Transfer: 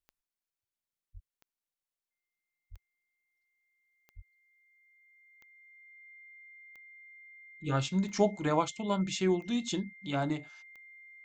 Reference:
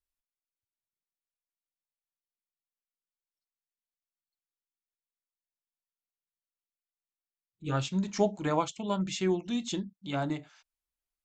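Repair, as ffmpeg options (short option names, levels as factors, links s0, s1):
-filter_complex "[0:a]adeclick=t=4,bandreject=f=2100:w=30,asplit=3[s0][s1][s2];[s0]afade=t=out:st=1.13:d=0.02[s3];[s1]highpass=f=140:w=0.5412,highpass=f=140:w=1.3066,afade=t=in:st=1.13:d=0.02,afade=t=out:st=1.25:d=0.02[s4];[s2]afade=t=in:st=1.25:d=0.02[s5];[s3][s4][s5]amix=inputs=3:normalize=0,asplit=3[s6][s7][s8];[s6]afade=t=out:st=2.7:d=0.02[s9];[s7]highpass=f=140:w=0.5412,highpass=f=140:w=1.3066,afade=t=in:st=2.7:d=0.02,afade=t=out:st=2.82:d=0.02[s10];[s8]afade=t=in:st=2.82:d=0.02[s11];[s9][s10][s11]amix=inputs=3:normalize=0,asplit=3[s12][s13][s14];[s12]afade=t=out:st=4.15:d=0.02[s15];[s13]highpass=f=140:w=0.5412,highpass=f=140:w=1.3066,afade=t=in:st=4.15:d=0.02,afade=t=out:st=4.27:d=0.02[s16];[s14]afade=t=in:st=4.27:d=0.02[s17];[s15][s16][s17]amix=inputs=3:normalize=0"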